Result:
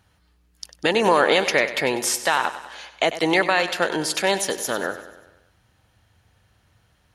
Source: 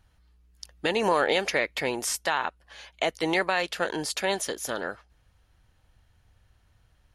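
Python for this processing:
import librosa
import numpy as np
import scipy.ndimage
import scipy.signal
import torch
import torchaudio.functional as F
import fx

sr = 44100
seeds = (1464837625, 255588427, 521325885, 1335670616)

p1 = scipy.signal.sosfilt(scipy.signal.butter(2, 94.0, 'highpass', fs=sr, output='sos'), x)
p2 = p1 + fx.echo_feedback(p1, sr, ms=97, feedback_pct=56, wet_db=-13.0, dry=0)
y = p2 * librosa.db_to_amplitude(6.0)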